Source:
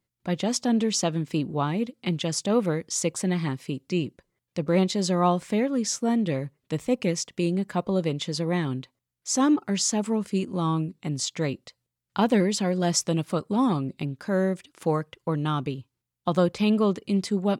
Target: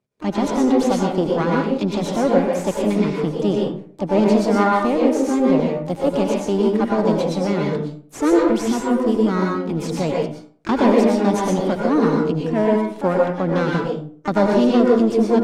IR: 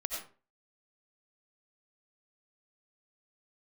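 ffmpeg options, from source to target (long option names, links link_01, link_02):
-filter_complex "[0:a]aeval=exprs='if(lt(val(0),0),0.251*val(0),val(0))':channel_layout=same,lowpass=frequency=8400:width=0.5412,lowpass=frequency=8400:width=1.3066,acrossover=split=5000[link_01][link_02];[link_02]acompressor=threshold=-44dB:ratio=4:attack=1:release=60[link_03];[link_01][link_03]amix=inputs=2:normalize=0,highpass=frequency=120:poles=1,asplit=2[link_04][link_05];[link_05]asetrate=66075,aresample=44100,atempo=0.66742,volume=-9dB[link_06];[link_04][link_06]amix=inputs=2:normalize=0,tiltshelf=frequency=780:gain=6,asetrate=50274,aresample=44100[link_07];[1:a]atrim=start_sample=2205,asetrate=33516,aresample=44100[link_08];[link_07][link_08]afir=irnorm=-1:irlink=0,volume=5dB"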